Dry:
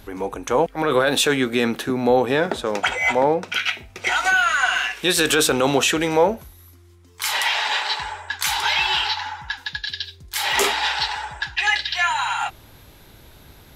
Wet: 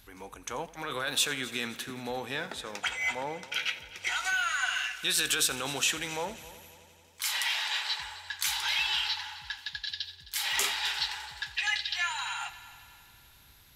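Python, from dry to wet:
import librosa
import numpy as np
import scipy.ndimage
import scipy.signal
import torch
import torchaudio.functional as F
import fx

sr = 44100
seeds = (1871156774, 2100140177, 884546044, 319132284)

y = fx.tone_stack(x, sr, knobs='5-5-5')
y = fx.echo_heads(y, sr, ms=87, heads='first and third', feedback_pct=63, wet_db=-18.5)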